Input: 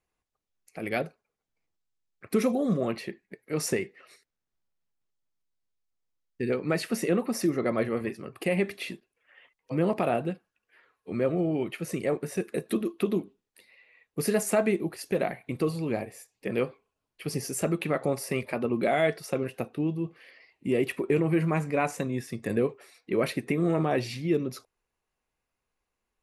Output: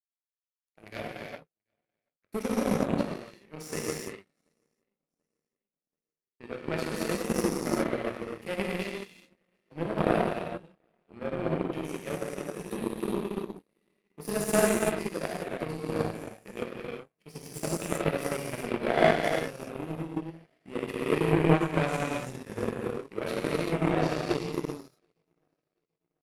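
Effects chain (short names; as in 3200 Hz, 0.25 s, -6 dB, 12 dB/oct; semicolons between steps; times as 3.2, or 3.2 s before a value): on a send: feedback echo 0.734 s, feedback 59%, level -23 dB; on the sum: non-linear reverb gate 0.43 s flat, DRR -7.5 dB; power-law curve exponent 2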